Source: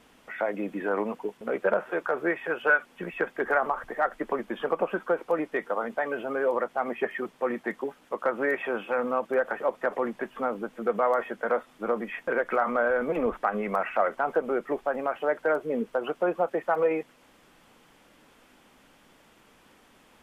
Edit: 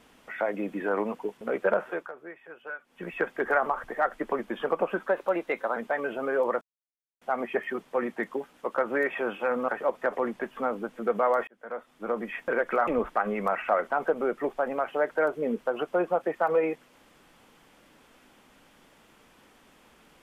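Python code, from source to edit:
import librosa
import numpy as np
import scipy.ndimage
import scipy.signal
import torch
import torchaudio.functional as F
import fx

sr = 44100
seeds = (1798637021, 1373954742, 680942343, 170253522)

y = fx.edit(x, sr, fx.fade_down_up(start_s=1.85, length_s=1.27, db=-16.5, fade_s=0.28),
    fx.speed_span(start_s=5.07, length_s=0.77, speed=1.11),
    fx.insert_silence(at_s=6.69, length_s=0.6),
    fx.cut(start_s=9.16, length_s=0.32),
    fx.fade_in_span(start_s=11.27, length_s=0.83),
    fx.cut(start_s=12.67, length_s=0.48), tone=tone)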